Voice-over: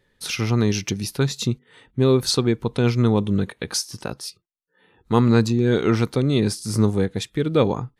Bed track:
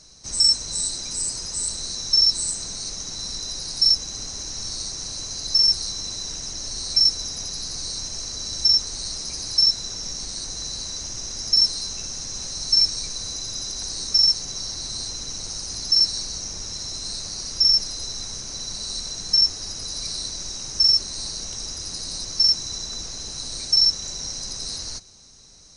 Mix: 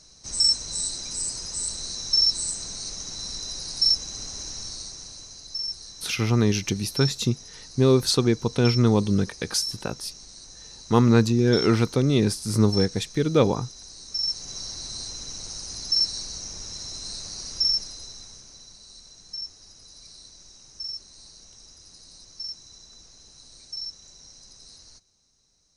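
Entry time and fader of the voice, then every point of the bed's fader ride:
5.80 s, −1.0 dB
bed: 0:04.48 −3 dB
0:05.48 −13.5 dB
0:14.03 −13.5 dB
0:14.54 −4.5 dB
0:17.58 −4.5 dB
0:18.81 −17.5 dB

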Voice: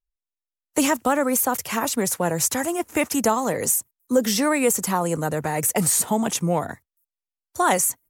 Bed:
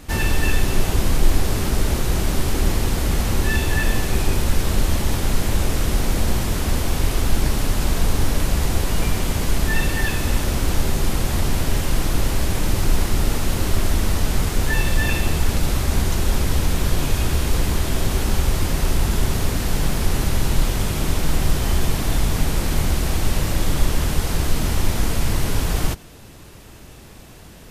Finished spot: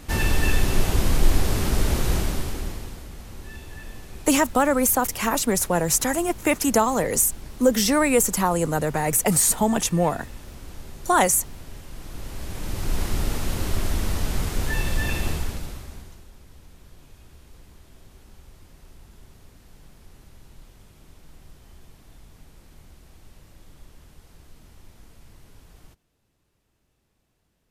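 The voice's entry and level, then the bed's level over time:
3.50 s, +1.0 dB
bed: 0:02.14 −2 dB
0:03.10 −20 dB
0:11.90 −20 dB
0:13.06 −5.5 dB
0:15.30 −5.5 dB
0:16.31 −29.5 dB

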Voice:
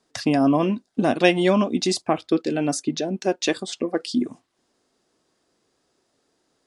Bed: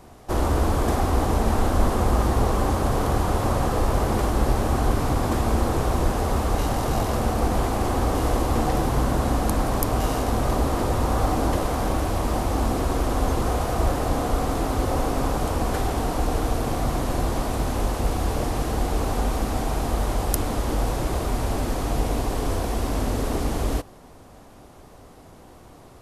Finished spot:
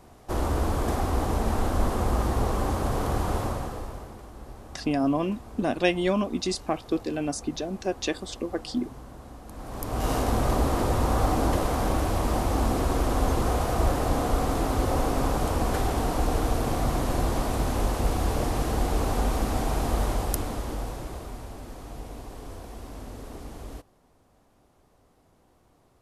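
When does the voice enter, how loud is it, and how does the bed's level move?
4.60 s, −6.0 dB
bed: 0:03.38 −4.5 dB
0:04.20 −22 dB
0:09.45 −22 dB
0:10.11 −1.5 dB
0:20.03 −1.5 dB
0:21.54 −15.5 dB

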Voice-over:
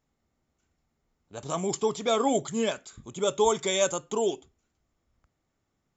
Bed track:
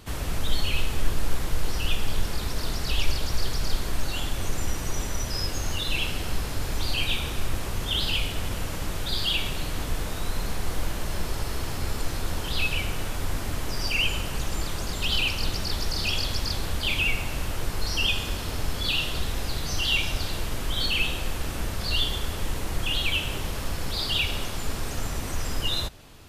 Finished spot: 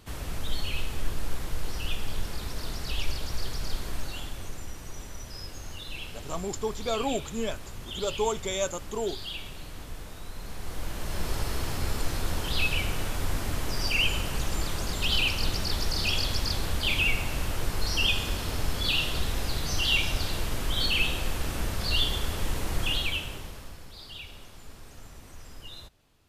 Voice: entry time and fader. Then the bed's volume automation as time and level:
4.80 s, −4.5 dB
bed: 0:03.96 −5.5 dB
0:04.68 −11.5 dB
0:10.34 −11.5 dB
0:11.32 −0.5 dB
0:22.88 −0.5 dB
0:23.90 −17 dB

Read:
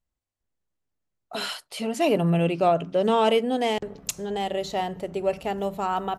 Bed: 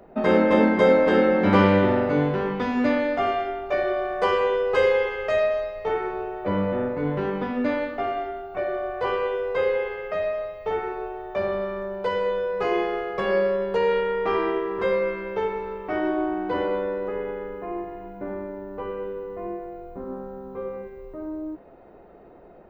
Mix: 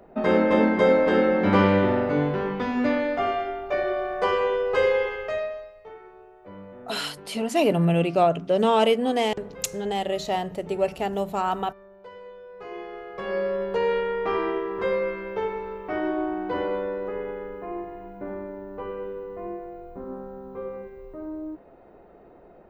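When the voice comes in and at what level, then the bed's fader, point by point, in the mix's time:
5.55 s, +1.0 dB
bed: 0:05.13 −1.5 dB
0:05.94 −18.5 dB
0:12.39 −18.5 dB
0:13.62 −2 dB

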